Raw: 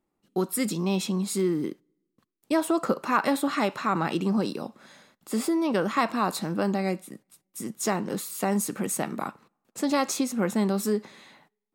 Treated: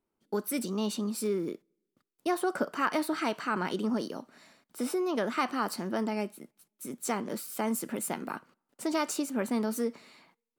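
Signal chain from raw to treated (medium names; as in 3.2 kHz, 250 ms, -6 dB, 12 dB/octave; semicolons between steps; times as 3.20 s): wide varispeed 1.11×; trim -5 dB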